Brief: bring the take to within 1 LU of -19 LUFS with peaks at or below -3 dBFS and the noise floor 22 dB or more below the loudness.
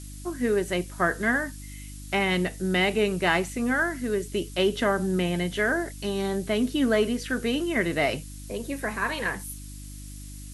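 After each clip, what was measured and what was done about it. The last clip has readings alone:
hum 50 Hz; highest harmonic 300 Hz; hum level -39 dBFS; noise floor -40 dBFS; noise floor target -49 dBFS; loudness -26.5 LUFS; peak level -8.5 dBFS; loudness target -19.0 LUFS
-> de-hum 50 Hz, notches 6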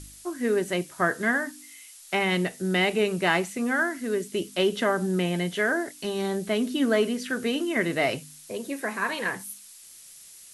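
hum not found; noise floor -48 dBFS; noise floor target -49 dBFS
-> noise print and reduce 6 dB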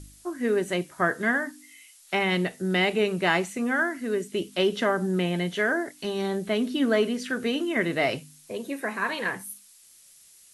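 noise floor -54 dBFS; loudness -26.5 LUFS; peak level -8.5 dBFS; loudness target -19.0 LUFS
-> trim +7.5 dB; peak limiter -3 dBFS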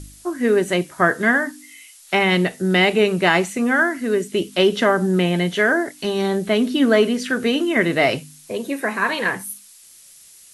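loudness -19.0 LUFS; peak level -3.0 dBFS; noise floor -47 dBFS

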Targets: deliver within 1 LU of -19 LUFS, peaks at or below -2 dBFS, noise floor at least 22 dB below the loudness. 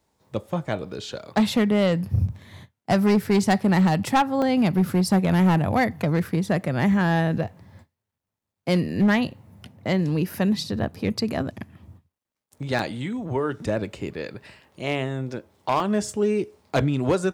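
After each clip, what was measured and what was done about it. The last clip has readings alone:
clipped samples 1.5%; clipping level -14.0 dBFS; dropouts 3; longest dropout 1.5 ms; loudness -23.5 LUFS; peak level -14.0 dBFS; loudness target -19.0 LUFS
-> clip repair -14 dBFS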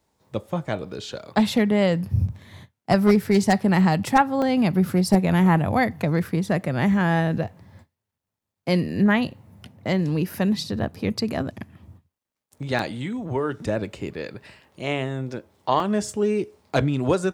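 clipped samples 0.0%; dropouts 3; longest dropout 1.5 ms
-> interpolate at 4.42/12.79/15.80 s, 1.5 ms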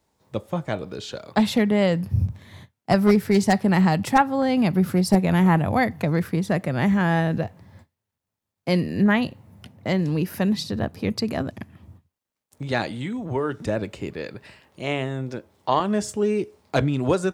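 dropouts 0; loudness -23.0 LUFS; peak level -5.0 dBFS; loudness target -19.0 LUFS
-> trim +4 dB; peak limiter -2 dBFS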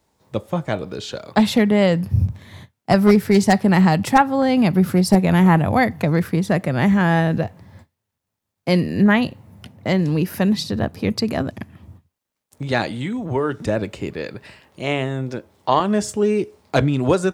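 loudness -19.0 LUFS; peak level -2.0 dBFS; noise floor -80 dBFS

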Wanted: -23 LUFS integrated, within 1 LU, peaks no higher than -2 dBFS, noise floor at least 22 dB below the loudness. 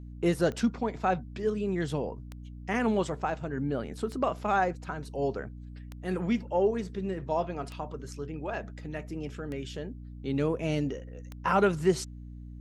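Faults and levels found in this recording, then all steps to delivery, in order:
clicks found 7; hum 60 Hz; highest harmonic 300 Hz; hum level -41 dBFS; loudness -31.0 LUFS; peak level -13.0 dBFS; loudness target -23.0 LUFS
-> de-click; de-hum 60 Hz, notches 5; trim +8 dB

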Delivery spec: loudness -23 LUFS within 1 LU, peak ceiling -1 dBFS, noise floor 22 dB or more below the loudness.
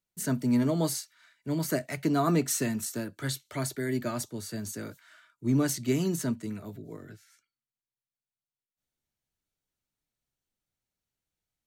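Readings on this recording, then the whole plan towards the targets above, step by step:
loudness -30.0 LUFS; peak level -14.0 dBFS; loudness target -23.0 LUFS
-> trim +7 dB

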